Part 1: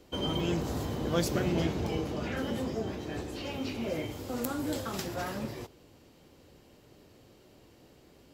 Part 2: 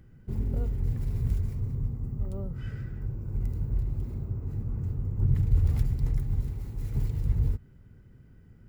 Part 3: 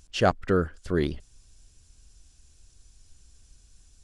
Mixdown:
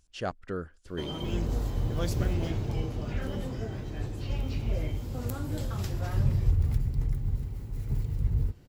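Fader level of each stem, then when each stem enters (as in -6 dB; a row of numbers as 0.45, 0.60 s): -5.0, -1.5, -11.5 dB; 0.85, 0.95, 0.00 s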